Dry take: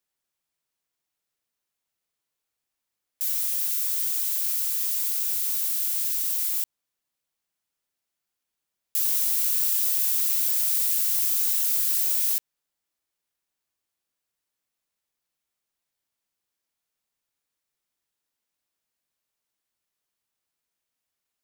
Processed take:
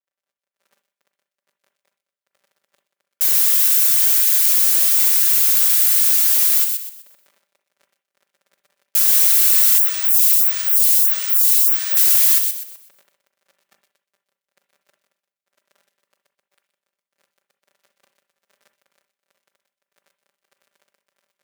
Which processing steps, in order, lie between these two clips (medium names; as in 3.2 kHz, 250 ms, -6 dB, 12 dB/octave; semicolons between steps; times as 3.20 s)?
crackle 26 per s -46 dBFS; peaking EQ 1.6 kHz +6 dB 1.2 oct; comb 5.1 ms, depth 87%; feedback echo behind a high-pass 125 ms, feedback 33%, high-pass 2.5 kHz, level -5 dB; saturation -4 dBFS, distortion -34 dB; level rider gain up to 7 dB; expander -56 dBFS; high-pass 140 Hz 12 dB/octave; peaking EQ 550 Hz +12 dB 0.56 oct; reverberation, pre-delay 38 ms, DRR 9.5 dB; 9.78–11.97 s: lamp-driven phase shifter 1.6 Hz; trim +1.5 dB